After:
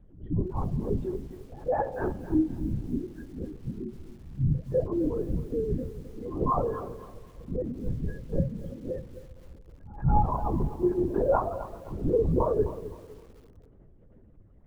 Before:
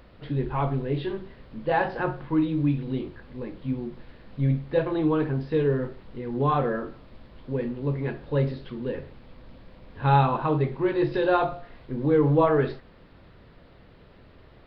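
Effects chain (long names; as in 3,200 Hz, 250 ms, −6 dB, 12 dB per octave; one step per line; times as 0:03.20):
expanding power law on the bin magnitudes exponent 2.2
flanger 0.77 Hz, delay 4.5 ms, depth 4.8 ms, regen −8%
echo ahead of the sound 190 ms −24 dB
on a send at −19 dB: convolution reverb RT60 2.6 s, pre-delay 3 ms
on the sum: treble cut that deepens with the level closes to 2,000 Hz, closed at −22.5 dBFS
linear-prediction vocoder at 8 kHz whisper
feedback echo at a low word length 260 ms, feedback 35%, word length 8 bits, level −14 dB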